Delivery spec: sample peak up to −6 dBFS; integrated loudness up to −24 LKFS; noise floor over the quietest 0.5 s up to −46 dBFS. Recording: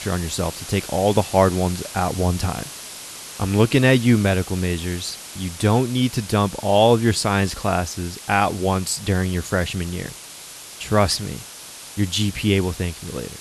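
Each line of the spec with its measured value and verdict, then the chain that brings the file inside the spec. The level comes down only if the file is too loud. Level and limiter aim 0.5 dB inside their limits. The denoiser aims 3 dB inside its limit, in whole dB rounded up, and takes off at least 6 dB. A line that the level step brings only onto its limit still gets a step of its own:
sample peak −2.5 dBFS: out of spec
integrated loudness −21.0 LKFS: out of spec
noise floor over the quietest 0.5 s −39 dBFS: out of spec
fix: broadband denoise 7 dB, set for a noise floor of −39 dBFS
level −3.5 dB
brickwall limiter −6.5 dBFS

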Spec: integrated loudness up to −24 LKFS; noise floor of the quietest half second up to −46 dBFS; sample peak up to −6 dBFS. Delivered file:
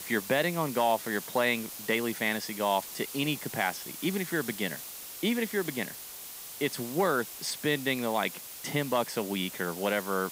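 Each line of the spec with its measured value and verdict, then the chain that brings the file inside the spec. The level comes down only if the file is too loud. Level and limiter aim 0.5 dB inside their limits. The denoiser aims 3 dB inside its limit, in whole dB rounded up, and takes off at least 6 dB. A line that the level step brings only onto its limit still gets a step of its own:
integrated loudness −30.5 LKFS: in spec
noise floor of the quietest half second −43 dBFS: out of spec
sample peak −12.5 dBFS: in spec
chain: broadband denoise 6 dB, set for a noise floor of −43 dBFS

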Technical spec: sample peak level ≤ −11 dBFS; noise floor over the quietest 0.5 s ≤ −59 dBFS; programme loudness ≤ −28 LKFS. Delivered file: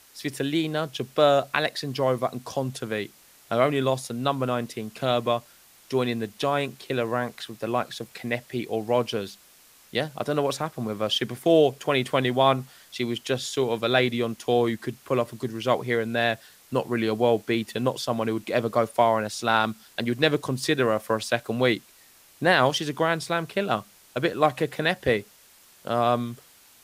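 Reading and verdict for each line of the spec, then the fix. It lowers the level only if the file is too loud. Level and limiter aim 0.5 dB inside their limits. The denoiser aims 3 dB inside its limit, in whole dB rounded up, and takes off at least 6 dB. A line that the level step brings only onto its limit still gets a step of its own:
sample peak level −5.5 dBFS: out of spec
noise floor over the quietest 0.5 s −55 dBFS: out of spec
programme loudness −25.5 LKFS: out of spec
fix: broadband denoise 6 dB, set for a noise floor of −55 dBFS
level −3 dB
brickwall limiter −11.5 dBFS

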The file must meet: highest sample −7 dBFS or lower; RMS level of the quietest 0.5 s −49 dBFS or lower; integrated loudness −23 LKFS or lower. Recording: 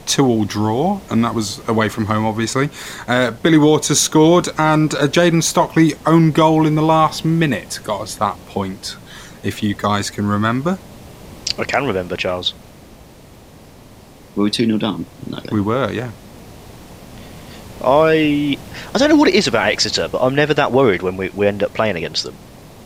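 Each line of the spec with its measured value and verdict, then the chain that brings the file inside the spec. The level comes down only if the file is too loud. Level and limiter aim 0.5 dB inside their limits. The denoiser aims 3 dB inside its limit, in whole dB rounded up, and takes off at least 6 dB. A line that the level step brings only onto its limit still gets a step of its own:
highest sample −1.5 dBFS: out of spec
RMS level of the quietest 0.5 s −42 dBFS: out of spec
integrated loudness −16.5 LKFS: out of spec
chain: broadband denoise 6 dB, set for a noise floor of −42 dBFS
level −7 dB

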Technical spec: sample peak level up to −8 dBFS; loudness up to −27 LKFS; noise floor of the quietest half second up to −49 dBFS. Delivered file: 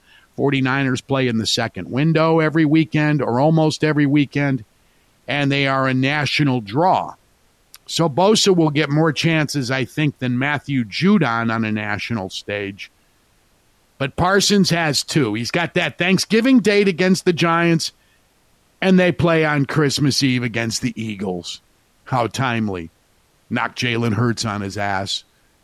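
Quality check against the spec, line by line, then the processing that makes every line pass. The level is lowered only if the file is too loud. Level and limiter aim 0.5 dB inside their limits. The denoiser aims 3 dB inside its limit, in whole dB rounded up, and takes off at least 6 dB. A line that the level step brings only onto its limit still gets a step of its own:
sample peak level −5.5 dBFS: out of spec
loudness −18.0 LKFS: out of spec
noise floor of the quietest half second −58 dBFS: in spec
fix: level −9.5 dB

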